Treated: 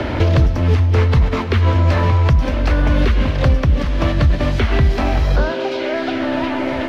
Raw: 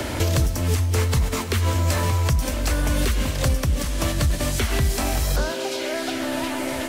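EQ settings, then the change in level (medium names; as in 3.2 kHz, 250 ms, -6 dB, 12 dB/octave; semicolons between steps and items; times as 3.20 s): distance through air 290 m; +7.5 dB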